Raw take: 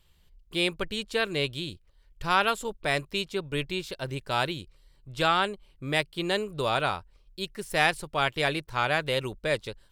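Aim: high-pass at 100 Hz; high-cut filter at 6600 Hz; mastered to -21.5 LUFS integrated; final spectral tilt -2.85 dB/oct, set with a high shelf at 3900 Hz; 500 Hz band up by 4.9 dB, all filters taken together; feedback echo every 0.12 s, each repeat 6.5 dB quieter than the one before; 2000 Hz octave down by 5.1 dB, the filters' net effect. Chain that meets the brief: HPF 100 Hz; LPF 6600 Hz; bell 500 Hz +6.5 dB; bell 2000 Hz -8.5 dB; high shelf 3900 Hz +4.5 dB; feedback echo 0.12 s, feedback 47%, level -6.5 dB; gain +5 dB

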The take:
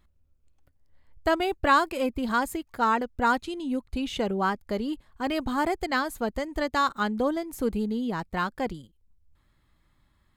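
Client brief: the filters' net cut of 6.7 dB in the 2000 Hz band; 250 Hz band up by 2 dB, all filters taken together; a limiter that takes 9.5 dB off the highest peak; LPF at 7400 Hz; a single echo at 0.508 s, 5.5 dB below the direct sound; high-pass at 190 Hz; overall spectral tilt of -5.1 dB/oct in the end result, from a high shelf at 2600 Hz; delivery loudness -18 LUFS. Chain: HPF 190 Hz; LPF 7400 Hz; bell 250 Hz +4 dB; bell 2000 Hz -7.5 dB; high shelf 2600 Hz -6 dB; limiter -22 dBFS; echo 0.508 s -5.5 dB; gain +12.5 dB

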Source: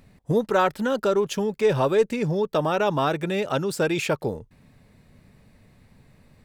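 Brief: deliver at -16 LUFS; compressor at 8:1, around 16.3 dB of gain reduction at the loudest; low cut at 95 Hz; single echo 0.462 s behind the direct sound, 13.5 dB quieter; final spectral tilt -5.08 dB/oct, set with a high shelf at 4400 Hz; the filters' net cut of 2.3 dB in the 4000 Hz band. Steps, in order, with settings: HPF 95 Hz; bell 4000 Hz -7 dB; high shelf 4400 Hz +8 dB; compressor 8:1, threshold -33 dBFS; echo 0.462 s -13.5 dB; gain +20.5 dB

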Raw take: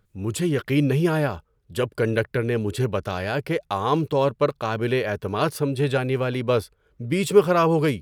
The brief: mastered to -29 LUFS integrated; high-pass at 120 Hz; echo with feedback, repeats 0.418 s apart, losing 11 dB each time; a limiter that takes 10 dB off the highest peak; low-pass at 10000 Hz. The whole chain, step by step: HPF 120 Hz; LPF 10000 Hz; limiter -15 dBFS; feedback echo 0.418 s, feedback 28%, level -11 dB; gain -2.5 dB

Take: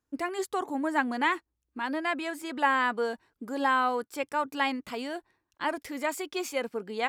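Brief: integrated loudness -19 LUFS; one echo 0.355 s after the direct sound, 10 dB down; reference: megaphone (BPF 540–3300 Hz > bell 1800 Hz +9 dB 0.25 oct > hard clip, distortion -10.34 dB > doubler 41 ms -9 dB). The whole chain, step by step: BPF 540–3300 Hz; bell 1800 Hz +9 dB 0.25 oct; echo 0.355 s -10 dB; hard clip -22 dBFS; doubler 41 ms -9 dB; gain +11.5 dB

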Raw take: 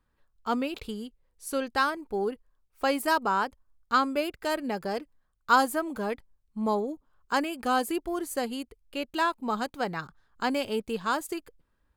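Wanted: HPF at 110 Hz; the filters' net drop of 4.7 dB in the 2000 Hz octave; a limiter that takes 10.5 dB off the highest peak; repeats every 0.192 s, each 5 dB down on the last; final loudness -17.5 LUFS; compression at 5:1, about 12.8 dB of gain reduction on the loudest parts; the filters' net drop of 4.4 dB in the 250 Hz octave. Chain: HPF 110 Hz; bell 250 Hz -5 dB; bell 2000 Hz -7 dB; compressor 5:1, threshold -32 dBFS; limiter -30 dBFS; feedback echo 0.192 s, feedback 56%, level -5 dB; gain +22 dB

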